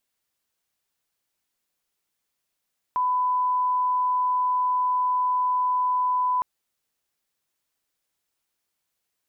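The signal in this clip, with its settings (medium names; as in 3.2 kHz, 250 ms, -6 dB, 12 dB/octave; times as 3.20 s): line-up tone -20 dBFS 3.46 s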